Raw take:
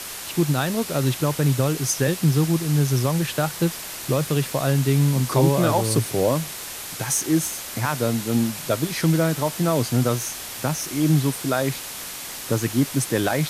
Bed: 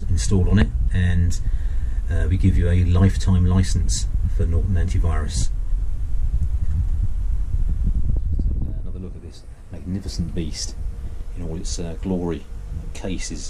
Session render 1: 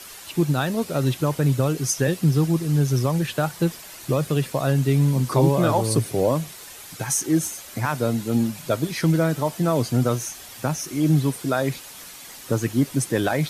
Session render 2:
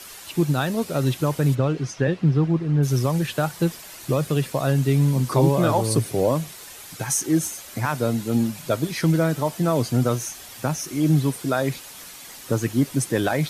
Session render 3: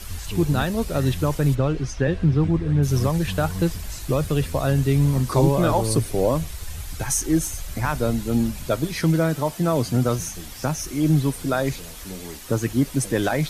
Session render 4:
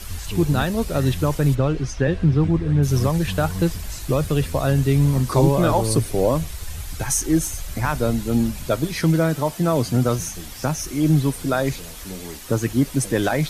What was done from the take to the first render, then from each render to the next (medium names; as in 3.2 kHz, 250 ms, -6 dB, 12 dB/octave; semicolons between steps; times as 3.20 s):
noise reduction 9 dB, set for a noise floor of -34 dBFS
1.54–2.82 s: low-pass 3.6 kHz -> 2.1 kHz
add bed -13 dB
trim +1.5 dB